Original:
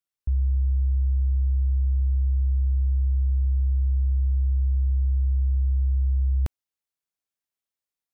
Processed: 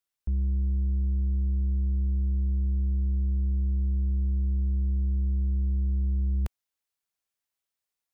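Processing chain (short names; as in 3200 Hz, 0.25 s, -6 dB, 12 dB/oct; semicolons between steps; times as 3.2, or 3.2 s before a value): bell 190 Hz -4.5 dB 2.3 oct; soft clip -25.5 dBFS, distortion -15 dB; gain +2.5 dB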